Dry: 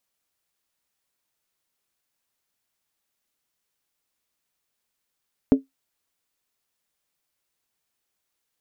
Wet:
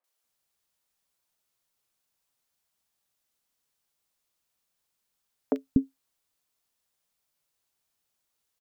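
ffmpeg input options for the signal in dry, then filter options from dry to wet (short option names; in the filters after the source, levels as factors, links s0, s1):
-f lavfi -i "aevalsrc='0.422*pow(10,-3*t/0.15)*sin(2*PI*269*t)+0.15*pow(10,-3*t/0.119)*sin(2*PI*428.8*t)+0.0531*pow(10,-3*t/0.103)*sin(2*PI*574.6*t)+0.0188*pow(10,-3*t/0.099)*sin(2*PI*617.6*t)+0.00668*pow(10,-3*t/0.092)*sin(2*PI*713.7*t)':d=0.63:s=44100"
-filter_complex "[0:a]acrossover=split=320|2000[s0][s1][s2];[s2]adelay=40[s3];[s0]adelay=240[s4];[s4][s1][s3]amix=inputs=3:normalize=0"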